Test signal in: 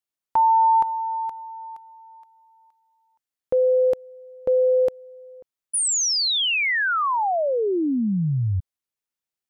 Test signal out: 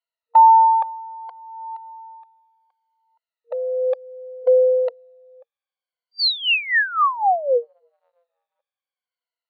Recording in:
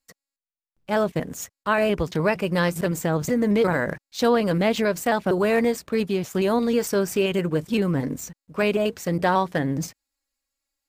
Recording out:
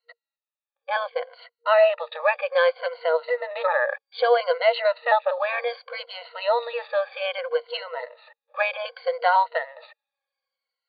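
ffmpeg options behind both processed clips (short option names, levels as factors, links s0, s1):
-af "afftfilt=real='re*pow(10,18/40*sin(2*PI*(1.9*log(max(b,1)*sr/1024/100)/log(2)-(-0.64)*(pts-256)/sr)))':imag='im*pow(10,18/40*sin(2*PI*(1.9*log(max(b,1)*sr/1024/100)/log(2)-(-0.64)*(pts-256)/sr)))':win_size=1024:overlap=0.75,highshelf=f=2200:g=-4,afftfilt=real='re*between(b*sr/4096,470,4700)':imag='im*between(b*sr/4096,470,4700)':win_size=4096:overlap=0.75"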